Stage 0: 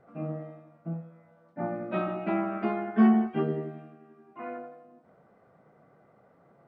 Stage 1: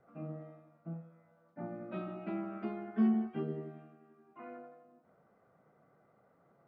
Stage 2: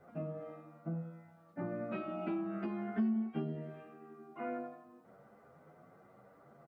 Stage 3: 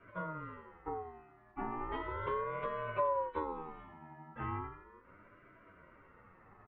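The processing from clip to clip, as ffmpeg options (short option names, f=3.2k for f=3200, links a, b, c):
-filter_complex "[0:a]acrossover=split=490|3000[a][b][c];[b]acompressor=threshold=-43dB:ratio=3[d];[a][d][c]amix=inputs=3:normalize=0,equalizer=f=1.3k:w=4.7:g=3.5,volume=-8dB"
-filter_complex "[0:a]acompressor=threshold=-42dB:ratio=5,asplit=2[a][b];[b]adelay=9.4,afreqshift=0.88[c];[a][c]amix=inputs=2:normalize=1,volume=10.5dB"
-af "highpass=170,lowpass=2.2k,aeval=exprs='val(0)*sin(2*PI*680*n/s+680*0.2/0.36*sin(2*PI*0.36*n/s))':c=same,volume=4dB"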